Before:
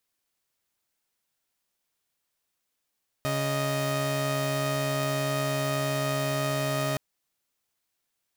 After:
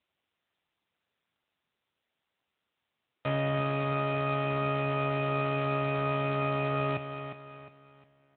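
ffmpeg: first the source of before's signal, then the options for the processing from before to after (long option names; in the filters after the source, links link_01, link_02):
-f lavfi -i "aevalsrc='0.0501*((2*mod(138.59*t,1)-1)+(2*mod(622.25*t,1)-1))':duration=3.72:sample_rate=44100"
-filter_complex "[0:a]asplit=2[link_01][link_02];[link_02]aecho=0:1:356|712|1068|1424:0.355|0.135|0.0512|0.0195[link_03];[link_01][link_03]amix=inputs=2:normalize=0,adynamicequalizer=threshold=0.00316:dfrequency=1600:dqfactor=5.4:tfrequency=1600:tqfactor=5.4:attack=5:release=100:ratio=0.375:range=2.5:mode=cutabove:tftype=bell" -ar 8000 -c:a libopencore_amrnb -b:a 7950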